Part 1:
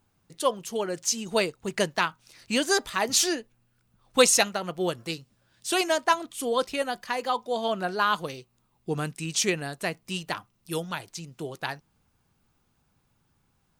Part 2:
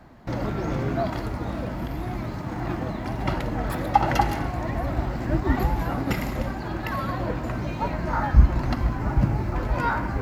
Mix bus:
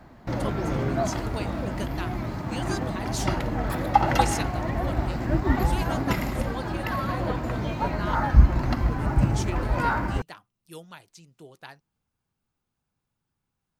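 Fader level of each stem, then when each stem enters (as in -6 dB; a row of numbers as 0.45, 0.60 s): -12.0, 0.0 dB; 0.00, 0.00 s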